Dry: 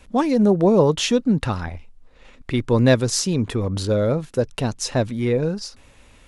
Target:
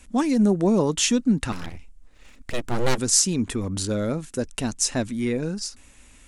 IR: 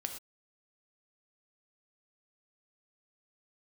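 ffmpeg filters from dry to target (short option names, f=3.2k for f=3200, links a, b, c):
-filter_complex "[0:a]equalizer=f=125:t=o:w=1:g=-9,equalizer=f=250:t=o:w=1:g=3,equalizer=f=500:t=o:w=1:g=-8,equalizer=f=1k:t=o:w=1:g=-4,equalizer=f=4k:t=o:w=1:g=-4,equalizer=f=8k:t=o:w=1:g=9,aeval=exprs='0.841*(cos(1*acos(clip(val(0)/0.841,-1,1)))-cos(1*PI/2))+0.00531*(cos(6*acos(clip(val(0)/0.841,-1,1)))-cos(6*PI/2))':c=same,asettb=1/sr,asplit=3[a][b][c];[a]atrim=end=1.524[d];[b]atrim=start=1.52:end=2.98,asetpts=PTS-STARTPTS,afade=t=in:d=0.004:c=qsin,afade=t=out:st=1.456:d=0.004:c=qsin,aeval=exprs='abs(val(0))':c=same[e];[c]atrim=start=2.976[f];[d][e]acrossfade=d=0.004:c1=hsin:c2=qsin[g];[g][f]acrossfade=d=0.004:c1=qsin:c2=hsin"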